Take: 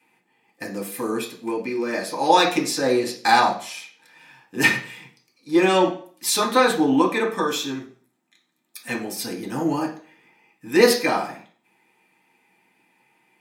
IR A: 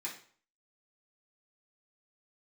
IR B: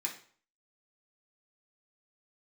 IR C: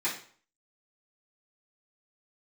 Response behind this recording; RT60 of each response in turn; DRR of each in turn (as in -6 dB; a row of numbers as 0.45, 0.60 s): B; 0.50, 0.50, 0.50 s; -7.0, -2.5, -12.0 dB